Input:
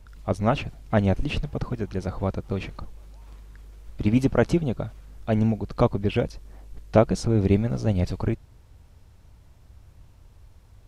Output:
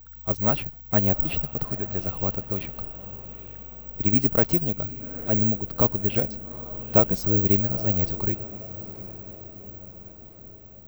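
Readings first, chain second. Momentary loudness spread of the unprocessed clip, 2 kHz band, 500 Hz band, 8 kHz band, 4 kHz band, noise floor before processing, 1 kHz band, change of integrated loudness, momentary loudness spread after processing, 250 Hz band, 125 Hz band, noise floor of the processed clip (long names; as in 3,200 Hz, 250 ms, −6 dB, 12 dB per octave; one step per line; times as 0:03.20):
11 LU, −3.5 dB, −3.5 dB, can't be measured, −3.5 dB, −53 dBFS, −3.5 dB, +2.5 dB, 20 LU, −3.5 dB, −3.5 dB, −46 dBFS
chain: on a send: feedback delay with all-pass diffusion 842 ms, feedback 56%, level −15 dB
on the sum: bad sample-rate conversion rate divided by 2×, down filtered, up zero stuff
level −3.5 dB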